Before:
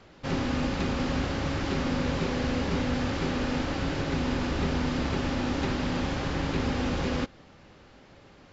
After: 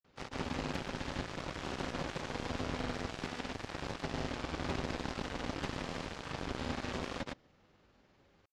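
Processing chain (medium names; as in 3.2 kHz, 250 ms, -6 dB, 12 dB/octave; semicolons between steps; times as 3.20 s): Chebyshev shaper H 7 -13 dB, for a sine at -15 dBFS; granulator, pitch spread up and down by 0 st; trim -7.5 dB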